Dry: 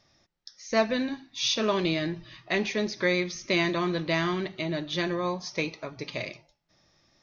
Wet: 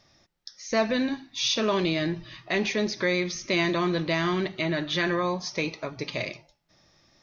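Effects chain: 4.61–5.23 bell 1600 Hz +7 dB 1.3 oct; in parallel at +3 dB: limiter -22.5 dBFS, peak gain reduction 11.5 dB; on the sum: gain -4 dB

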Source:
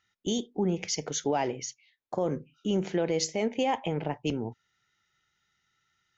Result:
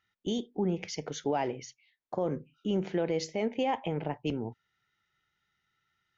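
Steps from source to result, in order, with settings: Gaussian blur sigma 1.6 samples; gain -2 dB

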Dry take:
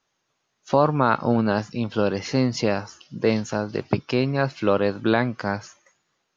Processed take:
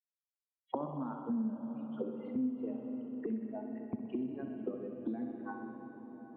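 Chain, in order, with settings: per-bin expansion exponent 3; auto-wah 240–2300 Hz, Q 8.2, down, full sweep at -25.5 dBFS; limiter -27.5 dBFS, peak gain reduction 6.5 dB; thinning echo 63 ms, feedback 79%, high-pass 360 Hz, level -8.5 dB; on a send at -7 dB: reverb RT60 6.1 s, pre-delay 30 ms; on the sum: compressor 2:1, threshold -40 dBFS, peak gain reduction 7.5 dB; rippled Chebyshev low-pass 3800 Hz, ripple 9 dB; notch 2600 Hz, Q 14; Doppler distortion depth 0.1 ms; gain +12.5 dB

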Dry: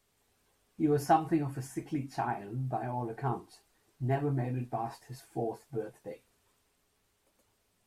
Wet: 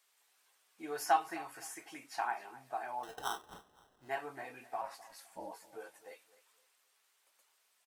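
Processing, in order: HPF 1000 Hz 12 dB/oct; 3.03–4.09 sample-rate reducer 2300 Hz, jitter 0%; 4.81–5.52 ring modulator 140 Hz; feedback echo 0.257 s, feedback 29%, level -18 dB; gain +2.5 dB

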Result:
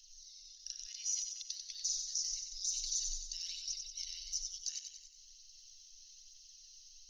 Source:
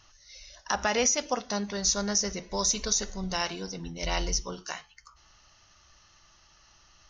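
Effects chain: in parallel at +1 dB: compressor 20:1, threshold -37 dBFS, peak gain reduction 17.5 dB; on the sum: bell 1300 Hz +5 dB 1.9 oct; on a send at -21 dB: reverb RT60 0.80 s, pre-delay 18 ms; on the sum: level quantiser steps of 19 dB; high shelf 6300 Hz +5 dB; phaser 1.1 Hz, delay 1.6 ms, feedback 40%; inverse Chebyshev band-stop 110–790 Hz, stop band 80 dB; thin delay 93 ms, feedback 57%, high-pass 2300 Hz, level -5 dB

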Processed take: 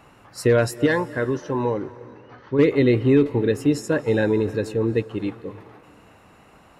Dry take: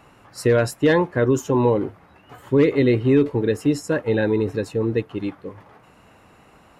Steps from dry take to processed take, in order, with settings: 0.86–2.59 rippled Chebyshev low-pass 6100 Hz, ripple 6 dB; reverb RT60 2.0 s, pre-delay 0.191 s, DRR 17.5 dB

